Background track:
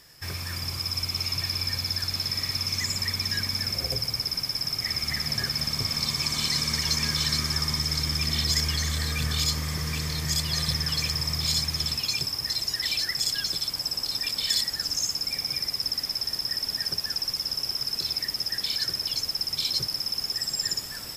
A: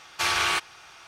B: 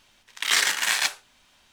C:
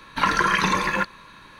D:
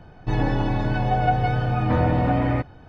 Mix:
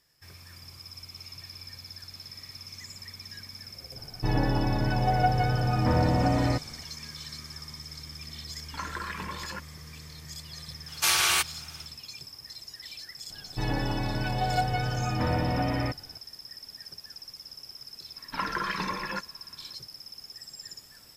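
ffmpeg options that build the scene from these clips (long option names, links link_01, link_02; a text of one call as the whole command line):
ffmpeg -i bed.wav -i cue0.wav -i cue1.wav -i cue2.wav -i cue3.wav -filter_complex "[4:a]asplit=2[link_01][link_02];[3:a]asplit=2[link_03][link_04];[0:a]volume=-15.5dB[link_05];[link_03]afwtdn=0.0501[link_06];[1:a]aemphasis=mode=production:type=75fm[link_07];[link_02]highshelf=frequency=2400:gain=11.5[link_08];[link_04]highshelf=frequency=4000:gain=-8.5[link_09];[link_01]atrim=end=2.88,asetpts=PTS-STARTPTS,volume=-3.5dB,afade=type=in:duration=0.004:curve=hsin,afade=type=out:start_time=2.876:duration=0.004:curve=hsin,adelay=3960[link_10];[link_06]atrim=end=1.59,asetpts=PTS-STARTPTS,volume=-16dB,afade=type=in:duration=0.004:curve=hsin,afade=type=out:start_time=1.586:duration=0.004:curve=hsin,adelay=8560[link_11];[link_07]atrim=end=1.07,asetpts=PTS-STARTPTS,volume=-3.5dB,afade=type=in:duration=0.1,afade=type=out:start_time=0.97:duration=0.1,adelay=10830[link_12];[link_08]atrim=end=2.88,asetpts=PTS-STARTPTS,volume=-7.5dB,afade=type=in:duration=0.004:curve=hsin,afade=type=out:start_time=2.876:duration=0.004:curve=hsin,adelay=13300[link_13];[link_09]atrim=end=1.59,asetpts=PTS-STARTPTS,volume=-10dB,afade=type=in:duration=0.004:curve=hsin,afade=type=out:start_time=1.586:duration=0.004:curve=hsin,adelay=18160[link_14];[link_05][link_10][link_11][link_12][link_13][link_14]amix=inputs=6:normalize=0" out.wav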